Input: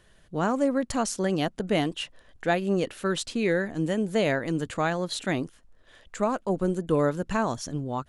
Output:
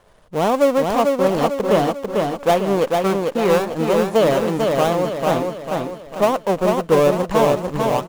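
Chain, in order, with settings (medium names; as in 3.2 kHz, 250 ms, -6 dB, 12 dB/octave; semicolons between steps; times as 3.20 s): dead-time distortion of 0.28 ms; high-order bell 730 Hz +8.5 dB; feedback delay 446 ms, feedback 46%, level -3.5 dB; trim +3.5 dB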